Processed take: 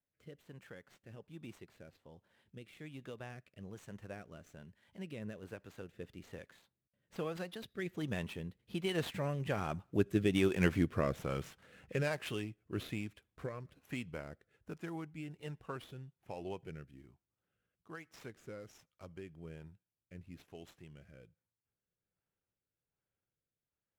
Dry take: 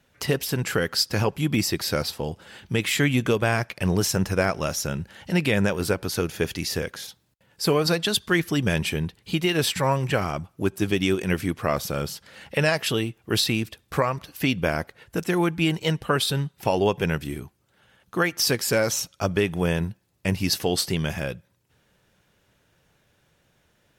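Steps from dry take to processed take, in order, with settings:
running median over 9 samples
source passing by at 0:10.55, 22 m/s, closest 17 metres
rotating-speaker cabinet horn 1.2 Hz
level −4 dB

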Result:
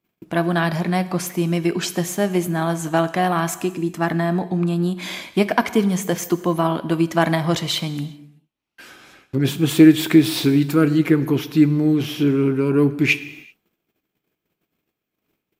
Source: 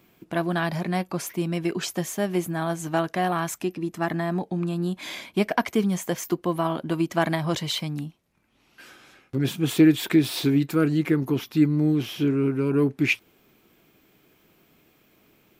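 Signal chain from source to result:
noise gate −56 dBFS, range −27 dB
on a send: convolution reverb, pre-delay 6 ms, DRR 13 dB
on the sum: level +5 dB

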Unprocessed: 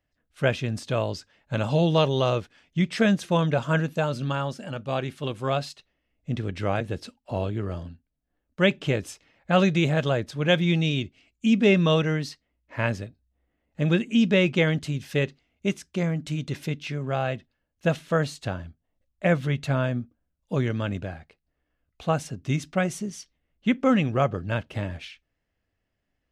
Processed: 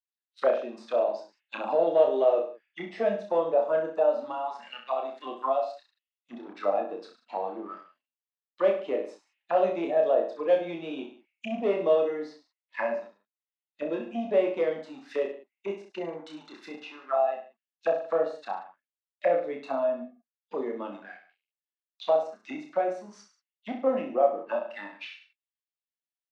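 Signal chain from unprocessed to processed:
Butterworth high-pass 230 Hz 36 dB per octave
noise reduction from a noise print of the clip's start 13 dB
dynamic equaliser 920 Hz, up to −5 dB, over −35 dBFS, Q 0.82
in parallel at −2.5 dB: downward compressor, threshold −37 dBFS, peak gain reduction 18.5 dB
on the sum: leveller curve on the samples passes 2
envelope filter 630–3,900 Hz, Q 3.5, down, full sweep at −20.5 dBFS
high-frequency loss of the air 54 metres
reverse bouncing-ball delay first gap 30 ms, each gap 1.1×, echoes 5

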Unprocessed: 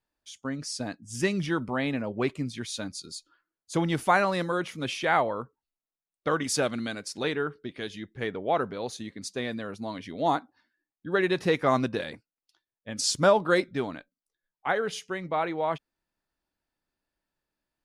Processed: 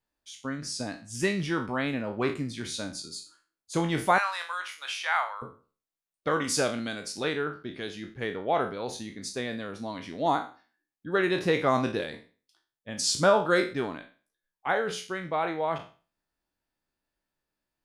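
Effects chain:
peak hold with a decay on every bin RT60 0.37 s
0:04.18–0:05.42: high-pass filter 910 Hz 24 dB per octave
level −1.5 dB

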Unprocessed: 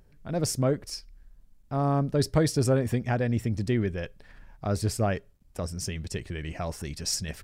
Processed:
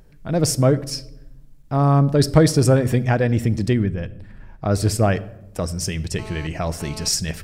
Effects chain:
0:03.83–0:04.72: high-shelf EQ 4,700 Hz −9.5 dB
rectangular room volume 3,600 cubic metres, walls furnished, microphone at 0.61 metres
0:03.73–0:04.39: gain on a spectral selection 310–7,100 Hz −6 dB
0:06.19–0:07.08: phone interference −46 dBFS
level +8 dB

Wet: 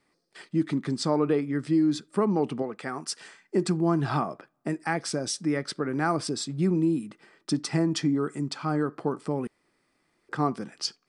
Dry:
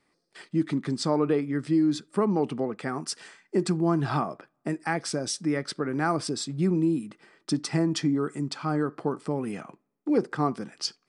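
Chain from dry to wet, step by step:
0:02.62–0:03.21: low-shelf EQ 370 Hz −7 dB
0:09.47–0:10.29: fill with room tone

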